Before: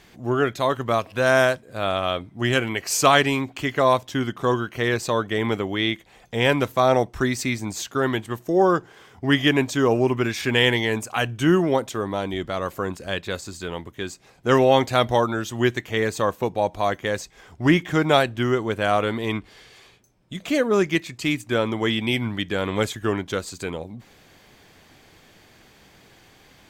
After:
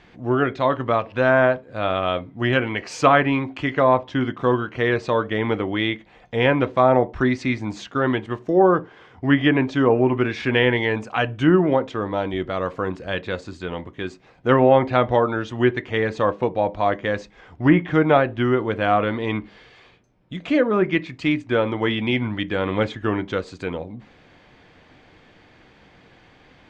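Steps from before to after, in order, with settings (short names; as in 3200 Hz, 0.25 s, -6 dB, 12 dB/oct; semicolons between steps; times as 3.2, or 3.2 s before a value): LPF 3100 Hz 12 dB/oct; treble ducked by the level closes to 2000 Hz, closed at -13.5 dBFS; on a send: reverb RT60 0.30 s, pre-delay 3 ms, DRR 11 dB; on the sum: gain +1.5 dB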